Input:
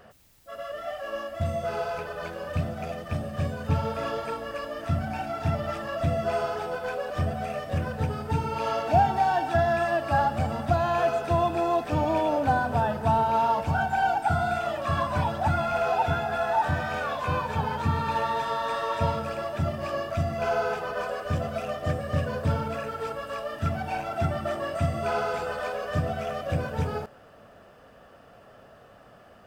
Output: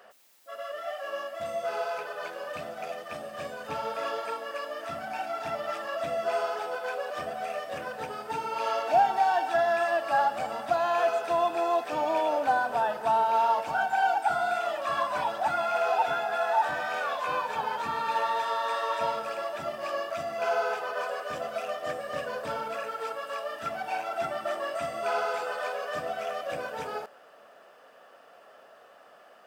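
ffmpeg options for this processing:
-af "highpass=490"

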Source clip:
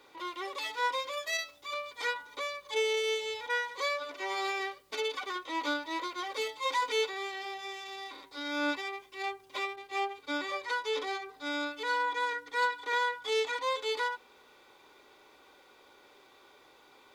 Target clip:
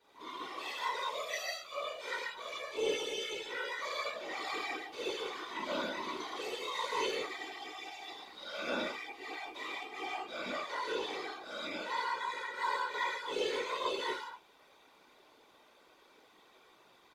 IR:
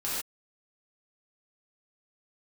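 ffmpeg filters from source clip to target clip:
-filter_complex "[1:a]atrim=start_sample=2205,asetrate=31311,aresample=44100[a];[0:a][a]afir=irnorm=-1:irlink=0,afftfilt=real='hypot(re,im)*cos(2*PI*random(0))':imag='hypot(re,im)*sin(2*PI*random(1))':win_size=512:overlap=0.75,asplit=2[b][c];[c]adelay=16,volume=-13dB[d];[b][d]amix=inputs=2:normalize=0,volume=-7dB"

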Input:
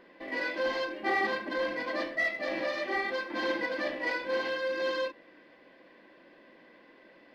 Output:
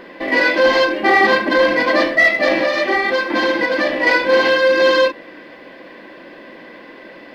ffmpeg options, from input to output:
-filter_complex "[0:a]asettb=1/sr,asplit=3[a][b][c];[a]atrim=end=2.524[d];[b]atrim=start=2.52:end=4.07,asetpts=PTS-STARTPTS,afade=t=in:d=0.004:c=qsin,afade=t=out:st=1.546:d=0.004:c=qsin,acompressor=threshold=-32dB:ratio=6[e];[c]atrim=start=4.066[f];[d][e]acrossfade=d=0.004:c1=hsin:c2=qsin[g];[g][f]acrossfade=d=0.004:c1=qsin:c2=hsin,alimiter=level_in=22dB:limit=-1dB:release=50:level=0:latency=1,volume=-3.5dB"

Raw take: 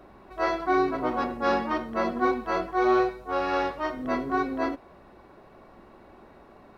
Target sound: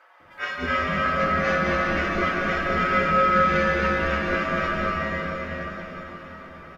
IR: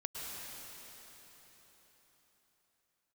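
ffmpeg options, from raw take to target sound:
-filter_complex "[0:a]flanger=delay=4.8:depth=9.5:regen=38:speed=0.54:shape=sinusoidal,aeval=exprs='val(0)*sin(2*PI*910*n/s)':c=same,acrossover=split=540[a][b];[a]adelay=200[c];[c][b]amix=inputs=2:normalize=0[d];[1:a]atrim=start_sample=2205,asetrate=32634,aresample=44100[e];[d][e]afir=irnorm=-1:irlink=0,volume=7dB"

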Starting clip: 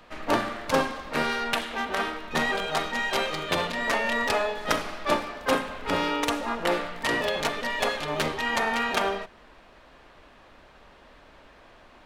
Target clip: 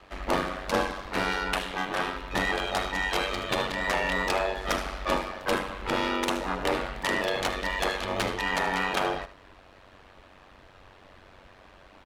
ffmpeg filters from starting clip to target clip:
-af "aeval=exprs='val(0)*sin(2*PI*47*n/s)':c=same,aecho=1:1:76:0.188,asoftclip=type=tanh:threshold=-18.5dB,volume=2.5dB"

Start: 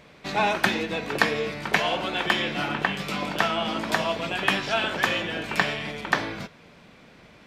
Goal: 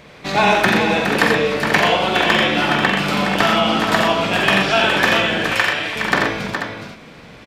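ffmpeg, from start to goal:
-filter_complex "[0:a]asettb=1/sr,asplit=3[a][b][c];[a]atrim=end=5.494[d];[b]atrim=start=5.49:end=5.96,asetpts=PTS-STARTPTS,afade=t=in:d=0.004:c=qsin,afade=t=out:st=0.466:d=0.004:c=qsin,highpass=890[e];[c]atrim=start=5.956[f];[d][e]acrossfade=d=0.004:c1=hsin:c2=qsin[g];[g][f]acrossfade=d=0.004:c1=qsin:c2=hsin,acrossover=split=2800[h][i];[i]alimiter=limit=-23dB:level=0:latency=1:release=277[j];[h][j]amix=inputs=2:normalize=0,asoftclip=type=hard:threshold=-13.5dB,aecho=1:1:46|87|125|416|487:0.473|0.596|0.355|0.447|0.335,volume=7.5dB"

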